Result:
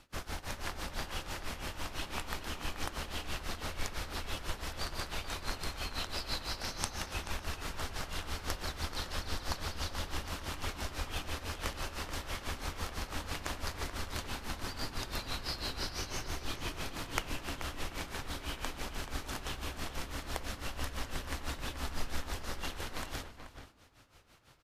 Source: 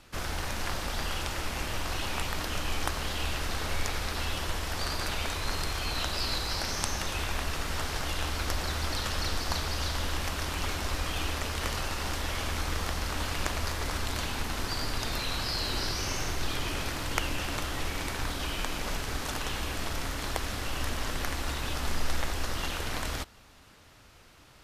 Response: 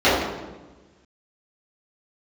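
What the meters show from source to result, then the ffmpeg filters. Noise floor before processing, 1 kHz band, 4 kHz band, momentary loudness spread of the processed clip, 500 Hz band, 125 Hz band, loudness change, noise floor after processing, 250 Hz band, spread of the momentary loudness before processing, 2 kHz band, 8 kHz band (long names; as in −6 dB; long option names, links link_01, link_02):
−55 dBFS, −6.5 dB, −7.0 dB, 4 LU, −6.5 dB, −7.5 dB, −7.0 dB, −54 dBFS, −6.5 dB, 3 LU, −7.0 dB, −7.5 dB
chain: -filter_complex "[0:a]tremolo=f=6:d=0.92,asplit=2[link_01][link_02];[link_02]adelay=431.5,volume=-9dB,highshelf=frequency=4000:gain=-9.71[link_03];[link_01][link_03]amix=inputs=2:normalize=0,asplit=2[link_04][link_05];[1:a]atrim=start_sample=2205[link_06];[link_05][link_06]afir=irnorm=-1:irlink=0,volume=-42dB[link_07];[link_04][link_07]amix=inputs=2:normalize=0,volume=-3.5dB"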